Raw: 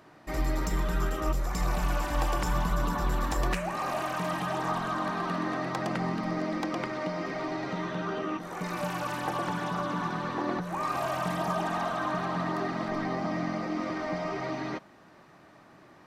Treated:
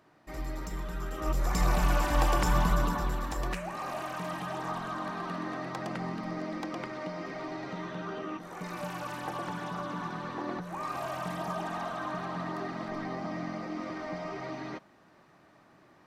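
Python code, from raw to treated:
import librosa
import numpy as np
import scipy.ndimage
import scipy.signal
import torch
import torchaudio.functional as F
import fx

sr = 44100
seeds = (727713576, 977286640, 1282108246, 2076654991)

y = fx.gain(x, sr, db=fx.line((1.05, -8.0), (1.47, 2.5), (2.71, 2.5), (3.23, -5.0)))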